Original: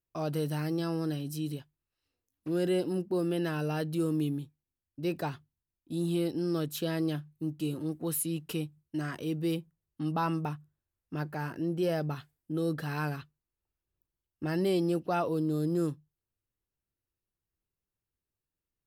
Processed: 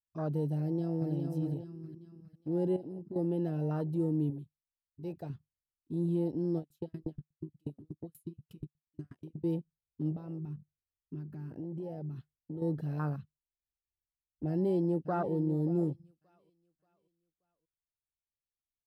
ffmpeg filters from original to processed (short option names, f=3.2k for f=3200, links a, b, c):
-filter_complex "[0:a]asplit=2[a][b];[b]afade=t=in:st=0.6:d=0.01,afade=t=out:st=1.12:d=0.01,aecho=0:1:410|820|1230|1640|2050|2460:0.562341|0.281171|0.140585|0.0702927|0.0351463|0.0175732[c];[a][c]amix=inputs=2:normalize=0,asettb=1/sr,asplit=3[d][e][f];[d]atrim=end=2.764[g];[e]atrim=start=2.76:end=3.16,asetpts=PTS-STARTPTS,afade=t=in:d=0.004:c=qsin,afade=t=out:st=0.396:d=0.004:c=qsin,acompressor=threshold=-36dB:ratio=16:attack=3.2:release=140:knee=1:detection=peak[h];[f]atrim=start=3.156[i];[g][h]acrossfade=d=0.004:c1=hsin:c2=qsin[j];[j][i]acrossfade=d=0.004:c1=qsin:c2=hsin,asettb=1/sr,asplit=3[k][l][m];[k]atrim=end=4.304[n];[l]atrim=start=4.3:end=5.3,asetpts=PTS-STARTPTS,afade=t=in:d=0.004:c=qsin,afade=t=out:st=0.996:d=0.004:c=qsin,equalizer=f=260:w=0.32:g=-7[o];[m]atrim=start=5.296[p];[n][o]acrossfade=d=0.004:c1=hsin:c2=qsin[q];[q][p]acrossfade=d=0.004:c1=qsin:c2=hsin,asettb=1/sr,asplit=3[r][s][t];[r]atrim=end=6.584[u];[s]atrim=start=6.58:end=9.44,asetpts=PTS-STARTPTS,afade=t=in:d=0.004:c=qsin,afade=t=out:st=2.856:d=0.004:c=qsin,aeval=exprs='val(0)*pow(10,-37*if(lt(mod(8.3*n/s,1),2*abs(8.3)/1000),1-mod(8.3*n/s,1)/(2*abs(8.3)/1000),(mod(8.3*n/s,1)-2*abs(8.3)/1000)/(1-2*abs(8.3)/1000))/20)':c=same[v];[t]atrim=start=9.436[w];[u][v]acrossfade=d=0.004:c1=hsin:c2=qsin[x];[x][w]acrossfade=d=0.004:c1=qsin:c2=hsin,asettb=1/sr,asplit=3[y][z][aa];[y]atrim=end=10.124[ab];[z]atrim=start=10.12:end=12.62,asetpts=PTS-STARTPTS,afade=t=in:d=0.004:c=qsin,afade=t=out:st=2.496:d=0.004:c=qsin,acompressor=threshold=-35dB:ratio=6:attack=3.2:release=140:knee=1:detection=peak[ac];[aa]atrim=start=12.616[ad];[ab][ac]acrossfade=d=0.004:c1=hsin:c2=qsin[ae];[ae][ad]acrossfade=d=0.004:c1=qsin:c2=hsin,asplit=2[af][ag];[ag]afade=t=in:st=14.47:d=0.01,afade=t=out:st=15.33:d=0.01,aecho=0:1:580|1160|1740|2320:0.211349|0.0845396|0.0338158|0.0135263[ah];[af][ah]amix=inputs=2:normalize=0,lowshelf=f=160:g=8.5,afwtdn=0.0251,volume=-3.5dB"